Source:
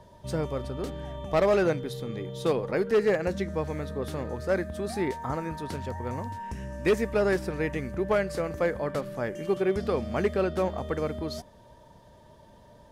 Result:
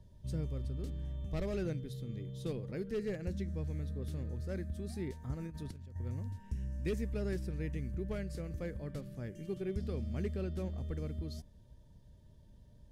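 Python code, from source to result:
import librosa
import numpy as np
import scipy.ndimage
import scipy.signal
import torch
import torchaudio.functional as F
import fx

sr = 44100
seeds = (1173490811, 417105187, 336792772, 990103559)

y = fx.tone_stack(x, sr, knobs='10-0-1')
y = fx.over_compress(y, sr, threshold_db=-52.0, ratio=-0.5, at=(5.34, 5.96))
y = y * 10.0 ** (9.0 / 20.0)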